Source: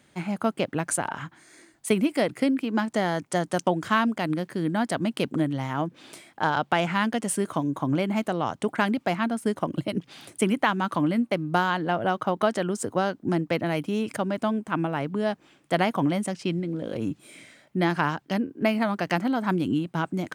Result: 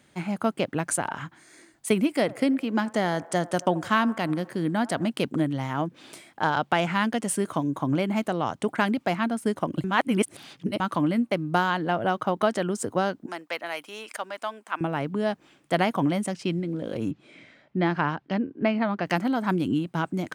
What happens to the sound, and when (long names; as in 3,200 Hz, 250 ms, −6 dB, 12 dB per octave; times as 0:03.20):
0:02.10–0:05.10: delay with a band-pass on its return 83 ms, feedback 64%, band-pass 810 Hz, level −19 dB
0:09.84–0:10.80: reverse
0:13.26–0:14.81: high-pass filter 810 Hz
0:17.11–0:19.06: high-frequency loss of the air 180 metres